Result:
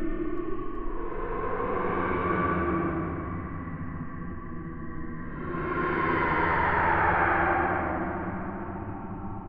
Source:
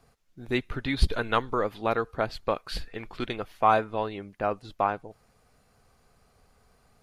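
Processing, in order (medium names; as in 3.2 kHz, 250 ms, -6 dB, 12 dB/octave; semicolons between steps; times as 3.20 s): self-modulated delay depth 0.46 ms; low-pass 2.6 kHz 24 dB/octave; de-hum 153.2 Hz, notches 10; Paulstretch 21×, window 0.05 s, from 1.12 s; frequency-shifting echo 279 ms, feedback 55%, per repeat -41 Hz, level -15.5 dB; spring tank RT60 2.9 s, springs 49 ms, chirp 50 ms, DRR 7.5 dB; speed mistake 45 rpm record played at 33 rpm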